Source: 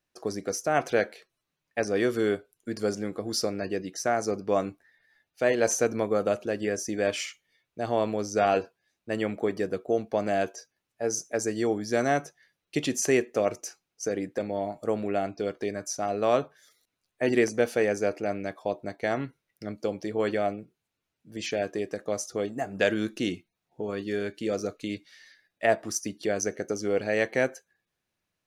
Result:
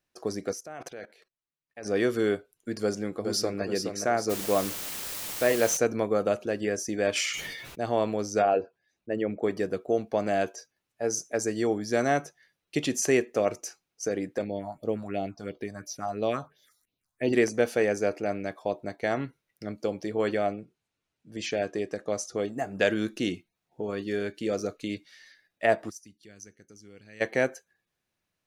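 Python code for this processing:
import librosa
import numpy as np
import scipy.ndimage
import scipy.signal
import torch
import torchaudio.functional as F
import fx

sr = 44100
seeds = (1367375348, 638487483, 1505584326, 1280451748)

y = fx.level_steps(x, sr, step_db=20, at=(0.53, 1.86))
y = fx.echo_throw(y, sr, start_s=2.82, length_s=0.8, ms=420, feedback_pct=45, wet_db=-6.0)
y = fx.quant_dither(y, sr, seeds[0], bits=6, dither='triangular', at=(4.29, 5.76), fade=0.02)
y = fx.sustainer(y, sr, db_per_s=35.0, at=(7.15, 7.83), fade=0.02)
y = fx.envelope_sharpen(y, sr, power=1.5, at=(8.41, 9.42), fade=0.02)
y = fx.phaser_stages(y, sr, stages=4, low_hz=370.0, high_hz=1700.0, hz=2.9, feedback_pct=25, at=(14.44, 17.33))
y = fx.lowpass(y, sr, hz=9700.0, slope=12, at=(20.45, 22.39))
y = fx.tone_stack(y, sr, knobs='6-0-2', at=(25.89, 27.2), fade=0.02)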